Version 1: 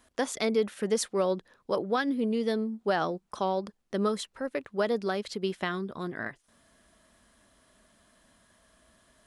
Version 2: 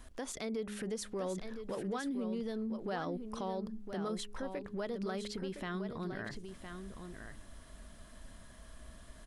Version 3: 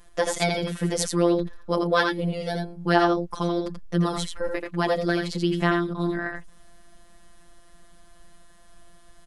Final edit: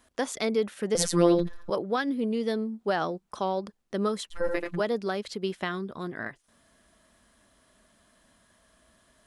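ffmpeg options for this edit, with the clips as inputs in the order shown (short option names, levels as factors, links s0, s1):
-filter_complex "[2:a]asplit=2[s0][s1];[0:a]asplit=3[s2][s3][s4];[s2]atrim=end=0.952[s5];[s0]atrim=start=0.948:end=1.702[s6];[s3]atrim=start=1.698:end=4.36[s7];[s1]atrim=start=4.3:end=4.81[s8];[s4]atrim=start=4.75[s9];[s5][s6]acrossfade=d=0.004:c1=hsin:c2=hsin[s10];[s10][s7]acrossfade=d=0.004:c1=hsin:c2=hsin[s11];[s11][s8]acrossfade=d=0.06:c1=tri:c2=tri[s12];[s12][s9]acrossfade=d=0.06:c1=tri:c2=tri"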